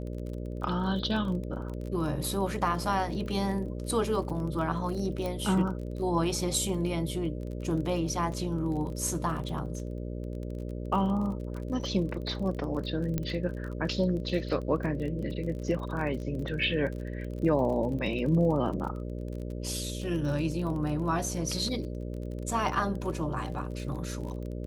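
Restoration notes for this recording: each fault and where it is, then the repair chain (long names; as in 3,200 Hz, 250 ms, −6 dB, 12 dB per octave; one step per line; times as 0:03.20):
mains buzz 60 Hz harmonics 10 −36 dBFS
surface crackle 29 per second −36 dBFS
0:05.26: click −21 dBFS
0:13.18: click −16 dBFS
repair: click removal
hum removal 60 Hz, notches 10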